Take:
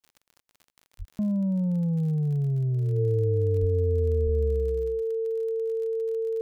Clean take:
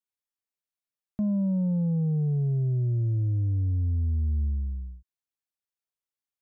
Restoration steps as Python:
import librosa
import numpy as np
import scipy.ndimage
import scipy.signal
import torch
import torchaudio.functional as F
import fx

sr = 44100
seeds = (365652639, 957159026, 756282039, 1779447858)

y = fx.fix_declick_ar(x, sr, threshold=6.5)
y = fx.notch(y, sr, hz=450.0, q=30.0)
y = fx.fix_deplosive(y, sr, at_s=(0.98, 3.6, 4.24))